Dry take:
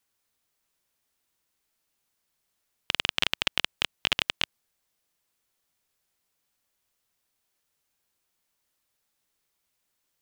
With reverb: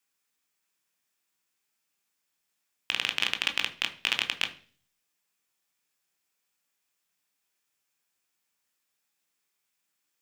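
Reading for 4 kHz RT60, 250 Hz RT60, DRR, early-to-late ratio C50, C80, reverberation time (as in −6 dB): 0.50 s, 0.65 s, 6.0 dB, 14.5 dB, 19.0 dB, 0.40 s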